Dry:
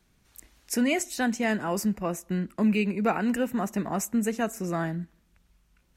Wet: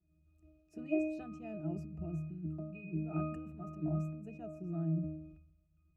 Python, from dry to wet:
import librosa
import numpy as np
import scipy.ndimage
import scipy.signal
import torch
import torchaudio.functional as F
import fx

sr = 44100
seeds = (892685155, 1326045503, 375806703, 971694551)

y = fx.peak_eq(x, sr, hz=1500.0, db=-11.0, octaves=1.5)
y = fx.over_compress(y, sr, threshold_db=-34.0, ratio=-1.0, at=(1.85, 4.24))
y = fx.octave_resonator(y, sr, note='D#', decay_s=0.67)
y = fx.sustainer(y, sr, db_per_s=61.0)
y = F.gain(torch.from_numpy(y), 11.5).numpy()